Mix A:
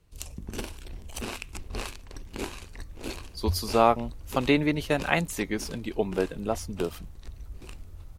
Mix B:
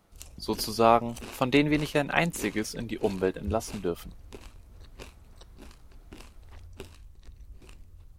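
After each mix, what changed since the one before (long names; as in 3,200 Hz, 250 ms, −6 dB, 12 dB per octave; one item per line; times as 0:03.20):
speech: entry −2.95 s
background −6.5 dB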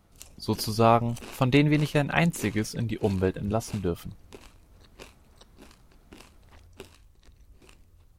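speech: remove high-pass filter 280 Hz 12 dB per octave
master: add low-shelf EQ 120 Hz −8.5 dB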